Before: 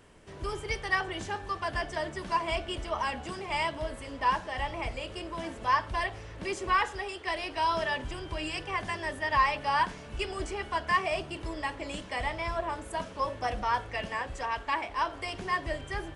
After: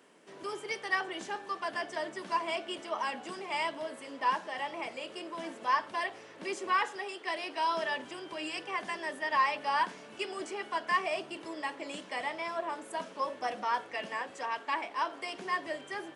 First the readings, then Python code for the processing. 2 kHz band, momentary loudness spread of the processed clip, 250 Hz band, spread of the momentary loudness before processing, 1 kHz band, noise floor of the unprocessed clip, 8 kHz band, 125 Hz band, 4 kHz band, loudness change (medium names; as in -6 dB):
-2.5 dB, 9 LU, -3.0 dB, 9 LU, -2.5 dB, -45 dBFS, -2.5 dB, under -15 dB, -2.5 dB, -2.5 dB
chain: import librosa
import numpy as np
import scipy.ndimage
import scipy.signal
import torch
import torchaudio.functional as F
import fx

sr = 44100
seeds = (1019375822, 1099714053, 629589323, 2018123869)

y = scipy.signal.sosfilt(scipy.signal.butter(4, 210.0, 'highpass', fs=sr, output='sos'), x)
y = F.gain(torch.from_numpy(y), -2.5).numpy()